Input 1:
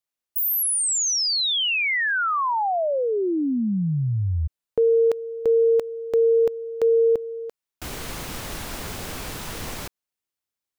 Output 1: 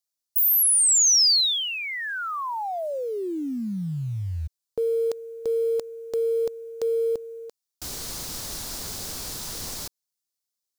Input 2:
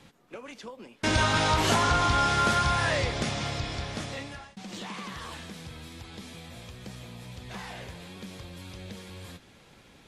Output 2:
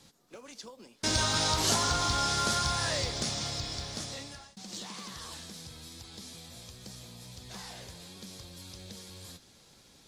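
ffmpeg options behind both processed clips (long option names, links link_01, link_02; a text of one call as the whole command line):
ffmpeg -i in.wav -af "highshelf=frequency=3500:width_type=q:width=1.5:gain=9,acrusher=bits=8:mode=log:mix=0:aa=0.000001,volume=-6dB" out.wav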